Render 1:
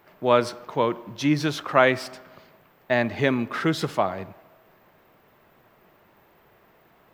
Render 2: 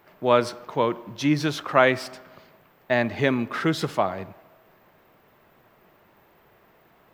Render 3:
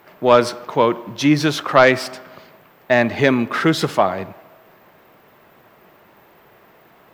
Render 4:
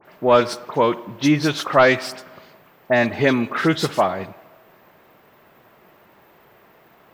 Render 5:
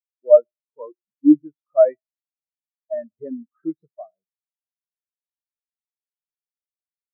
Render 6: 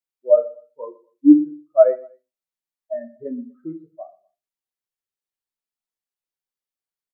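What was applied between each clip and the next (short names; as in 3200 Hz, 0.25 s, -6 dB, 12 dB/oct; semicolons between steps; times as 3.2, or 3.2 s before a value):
nothing audible
low shelf 78 Hz -9.5 dB; sine folder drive 4 dB, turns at -2.5 dBFS
dispersion highs, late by 54 ms, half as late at 3000 Hz; gain -2 dB
spectral expander 4:1
feedback echo 0.121 s, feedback 29%, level -21 dB; on a send at -2.5 dB: reverb RT60 0.25 s, pre-delay 4 ms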